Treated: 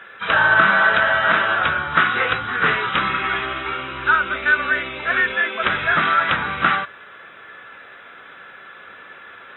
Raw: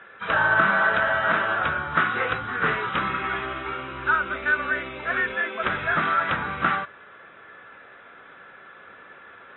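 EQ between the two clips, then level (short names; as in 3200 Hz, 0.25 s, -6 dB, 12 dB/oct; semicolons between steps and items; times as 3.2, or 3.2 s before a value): high shelf 2600 Hz +12 dB; +2.5 dB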